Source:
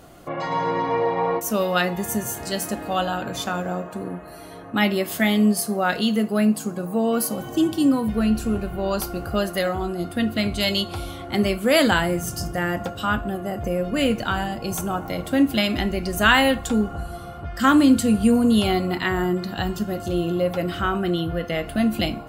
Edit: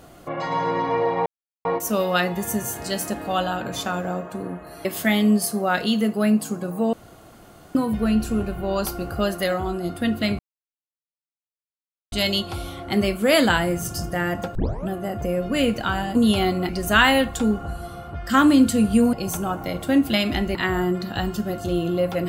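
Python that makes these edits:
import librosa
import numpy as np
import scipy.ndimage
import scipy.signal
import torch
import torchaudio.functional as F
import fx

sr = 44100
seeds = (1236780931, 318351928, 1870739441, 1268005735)

y = fx.edit(x, sr, fx.insert_silence(at_s=1.26, length_s=0.39),
    fx.cut(start_s=4.46, length_s=0.54),
    fx.room_tone_fill(start_s=7.08, length_s=0.82),
    fx.insert_silence(at_s=10.54, length_s=1.73),
    fx.tape_start(start_s=12.97, length_s=0.33),
    fx.swap(start_s=14.57, length_s=1.42, other_s=18.43, other_length_s=0.54), tone=tone)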